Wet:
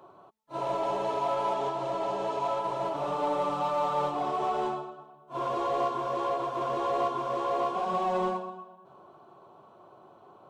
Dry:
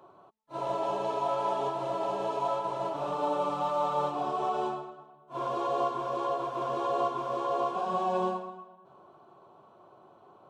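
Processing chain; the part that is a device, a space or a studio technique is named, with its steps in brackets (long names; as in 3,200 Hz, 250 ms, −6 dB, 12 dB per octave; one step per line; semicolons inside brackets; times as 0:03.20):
0:01.54–0:02.57: Chebyshev low-pass filter 7,700 Hz, order 2
parallel distortion (in parallel at −5.5 dB: hard clipping −31 dBFS, distortion −9 dB)
on the sum: level −1.5 dB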